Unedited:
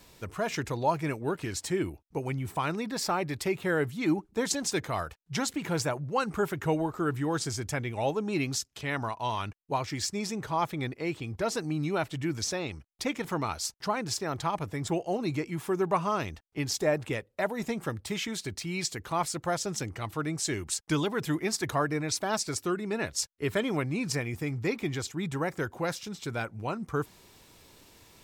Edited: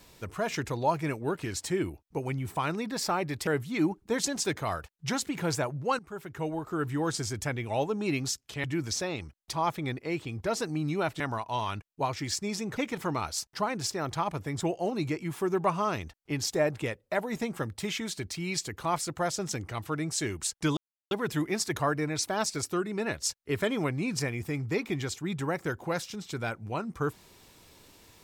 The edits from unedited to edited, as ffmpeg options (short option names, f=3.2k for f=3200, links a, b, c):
-filter_complex "[0:a]asplit=8[a][b][c][d][e][f][g][h];[a]atrim=end=3.472[i];[b]atrim=start=3.738:end=6.26,asetpts=PTS-STARTPTS,afade=t=out:st=2.518:d=0.004:c=hsin:silence=0.125893[j];[c]atrim=start=6.26:end=8.912,asetpts=PTS-STARTPTS,afade=t=in:d=1.01:silence=0.125893[k];[d]atrim=start=12.148:end=13.042[l];[e]atrim=start=10.478:end=12.152[m];[f]atrim=start=8.908:end=10.482[n];[g]atrim=start=13.038:end=21.04,asetpts=PTS-STARTPTS,afade=t=out:st=7.998:d=0.004:c=hsin,apad=pad_dur=0.34[o];[h]atrim=start=21.04,asetpts=PTS-STARTPTS,afade=t=in:d=0.004:c=hsin[p];[j][k]concat=n=2:v=0:a=1[q];[i][q]acrossfade=d=0.004:c1=hsin:c2=hsin[r];[r][l]acrossfade=d=0.004:c1=hsin:c2=hsin[s];[s][m]acrossfade=d=0.004:c1=hsin:c2=hsin[t];[t][n]acrossfade=d=0.004:c1=hsin:c2=hsin[u];[o][p]concat=n=2:v=0:a=1[v];[u][v]acrossfade=d=0.004:c1=hsin:c2=hsin"